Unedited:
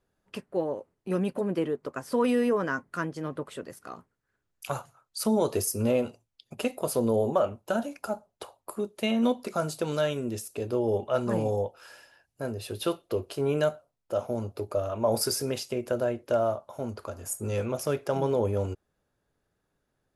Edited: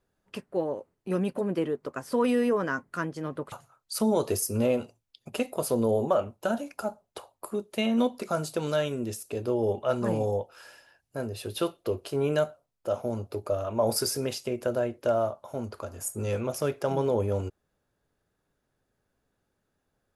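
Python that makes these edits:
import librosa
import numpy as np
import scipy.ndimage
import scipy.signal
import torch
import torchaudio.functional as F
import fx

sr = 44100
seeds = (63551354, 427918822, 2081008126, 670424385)

y = fx.edit(x, sr, fx.cut(start_s=3.52, length_s=1.25), tone=tone)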